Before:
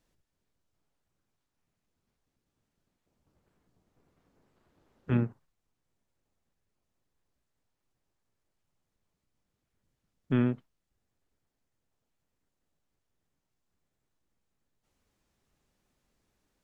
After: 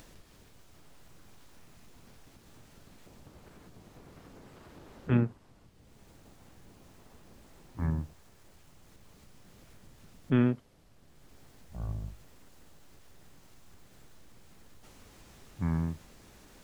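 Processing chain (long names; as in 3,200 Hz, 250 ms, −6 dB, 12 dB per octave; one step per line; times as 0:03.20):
upward compression, threshold −39 dBFS
delay with pitch and tempo change per echo 156 ms, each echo −7 semitones, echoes 2, each echo −6 dB
level +1.5 dB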